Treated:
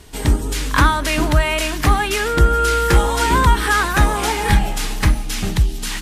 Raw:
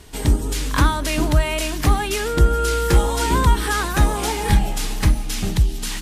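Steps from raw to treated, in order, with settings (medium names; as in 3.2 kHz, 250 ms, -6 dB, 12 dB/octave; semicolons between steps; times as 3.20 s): dynamic bell 1.6 kHz, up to +6 dB, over -36 dBFS, Q 0.7; trim +1 dB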